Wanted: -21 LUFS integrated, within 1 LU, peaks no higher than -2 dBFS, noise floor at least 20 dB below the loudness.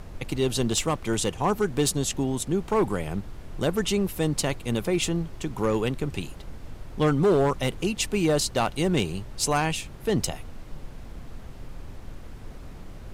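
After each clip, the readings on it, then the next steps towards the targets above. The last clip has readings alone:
clipped 0.7%; flat tops at -16.0 dBFS; noise floor -42 dBFS; noise floor target -46 dBFS; loudness -26.0 LUFS; peak -16.0 dBFS; loudness target -21.0 LUFS
-> clip repair -16 dBFS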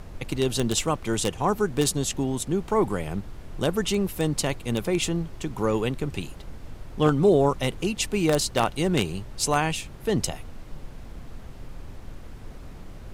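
clipped 0.0%; noise floor -42 dBFS; noise floor target -46 dBFS
-> noise print and reduce 6 dB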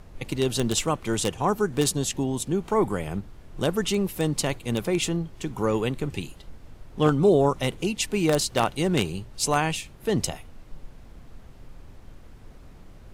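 noise floor -47 dBFS; loudness -25.5 LUFS; peak -7.0 dBFS; loudness target -21.0 LUFS
-> gain +4.5 dB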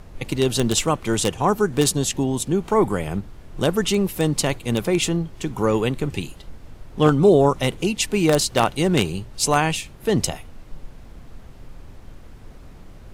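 loudness -21.0 LUFS; peak -2.5 dBFS; noise floor -43 dBFS

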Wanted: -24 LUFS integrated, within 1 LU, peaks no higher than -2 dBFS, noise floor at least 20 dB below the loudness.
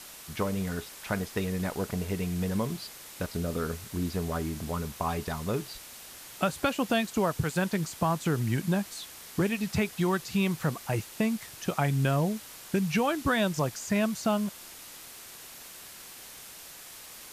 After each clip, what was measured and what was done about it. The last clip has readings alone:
noise floor -47 dBFS; noise floor target -50 dBFS; loudness -30.0 LUFS; peak -13.5 dBFS; loudness target -24.0 LUFS
-> noise print and reduce 6 dB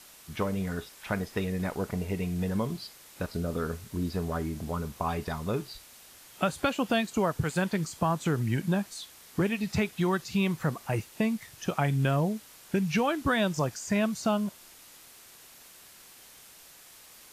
noise floor -53 dBFS; loudness -30.5 LUFS; peak -14.0 dBFS; loudness target -24.0 LUFS
-> gain +6.5 dB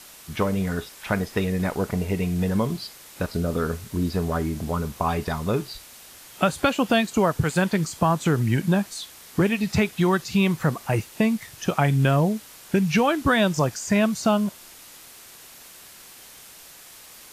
loudness -24.0 LUFS; peak -7.5 dBFS; noise floor -46 dBFS

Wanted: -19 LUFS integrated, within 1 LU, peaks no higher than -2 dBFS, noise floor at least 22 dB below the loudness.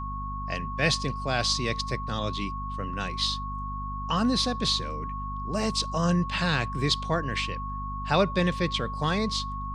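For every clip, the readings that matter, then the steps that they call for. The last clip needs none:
hum 50 Hz; harmonics up to 250 Hz; hum level -33 dBFS; steady tone 1100 Hz; tone level -34 dBFS; loudness -28.0 LUFS; peak -8.5 dBFS; loudness target -19.0 LUFS
-> notches 50/100/150/200/250 Hz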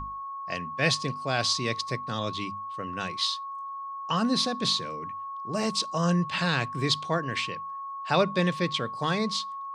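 hum none; steady tone 1100 Hz; tone level -34 dBFS
-> notch 1100 Hz, Q 30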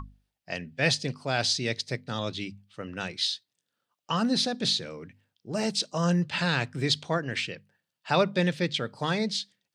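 steady tone none; loudness -28.0 LUFS; peak -9.5 dBFS; loudness target -19.0 LUFS
-> gain +9 dB; limiter -2 dBFS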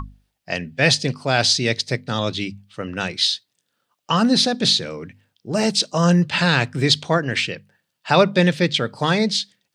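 loudness -19.5 LUFS; peak -2.0 dBFS; noise floor -76 dBFS

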